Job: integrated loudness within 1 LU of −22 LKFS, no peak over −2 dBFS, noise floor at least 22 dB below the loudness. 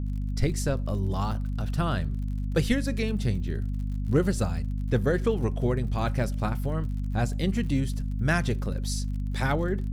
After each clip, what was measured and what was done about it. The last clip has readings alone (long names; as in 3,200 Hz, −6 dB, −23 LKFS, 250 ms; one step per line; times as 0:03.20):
crackle rate 52 per second; mains hum 50 Hz; hum harmonics up to 250 Hz; level of the hum −27 dBFS; integrated loudness −28.0 LKFS; sample peak −10.5 dBFS; target loudness −22.0 LKFS
→ click removal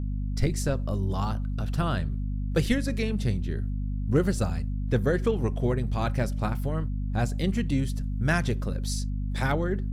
crackle rate 0.50 per second; mains hum 50 Hz; hum harmonics up to 250 Hz; level of the hum −27 dBFS
→ hum removal 50 Hz, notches 5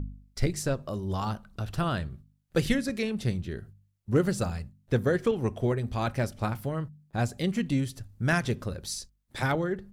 mains hum none found; integrated loudness −30.0 LKFS; sample peak −12.5 dBFS; target loudness −22.0 LKFS
→ level +8 dB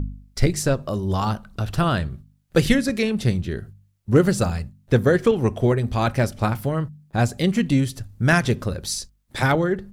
integrated loudness −22.0 LKFS; sample peak −4.5 dBFS; background noise floor −61 dBFS